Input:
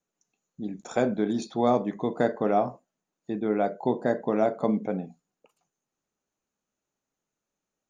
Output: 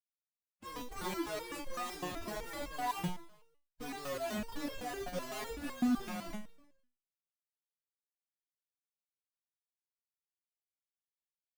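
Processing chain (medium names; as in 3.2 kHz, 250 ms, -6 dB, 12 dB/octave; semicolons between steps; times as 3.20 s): gliding tape speed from 162% -> 70%; peaking EQ 210 Hz +7.5 dB 1.2 oct; hum notches 60/120 Hz; Schmitt trigger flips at -36.5 dBFS; time stretch by phase-locked vocoder 1.7×; feedback delay 150 ms, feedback 38%, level -17.5 dB; resonator arpeggio 7.9 Hz 180–540 Hz; trim +3.5 dB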